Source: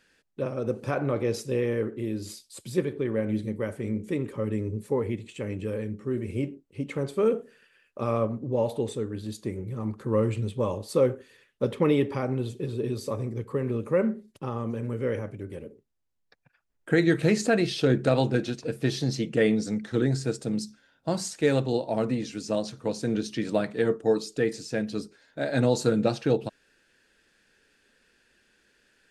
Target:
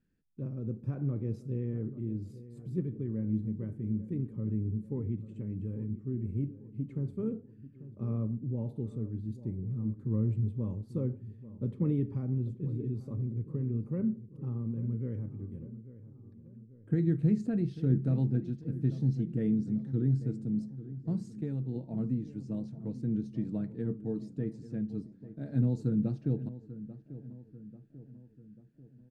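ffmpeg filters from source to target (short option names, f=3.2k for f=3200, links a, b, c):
-filter_complex "[0:a]firequalizer=gain_entry='entry(170,0);entry(540,-22);entry(3000,-29)':delay=0.05:min_phase=1,asettb=1/sr,asplit=3[a][b][c];[a]atrim=end=21.314[d];[b]atrim=start=21.31:end=21.76,asetpts=PTS-STARTPTS,afade=t=in:d=0.004:c=qsin,afade=t=out:st=0.446:d=0.004:c=qsin,acompressor=threshold=-31dB:ratio=6[e];[c]atrim=start=21.756[f];[d][e]acrossfade=d=0.004:c1=hsin:c2=qsin[g];[g][f]acrossfade=d=0.004:c1=qsin:c2=hsin,asplit=2[h][i];[i]adelay=841,lowpass=f=1.6k:p=1,volume=-14.5dB,asplit=2[j][k];[k]adelay=841,lowpass=f=1.6k:p=1,volume=0.54,asplit=2[l][m];[m]adelay=841,lowpass=f=1.6k:p=1,volume=0.54,asplit=2[n][o];[o]adelay=841,lowpass=f=1.6k:p=1,volume=0.54,asplit=2[p][q];[q]adelay=841,lowpass=f=1.6k:p=1,volume=0.54[r];[h][j][l][n][p][r]amix=inputs=6:normalize=0"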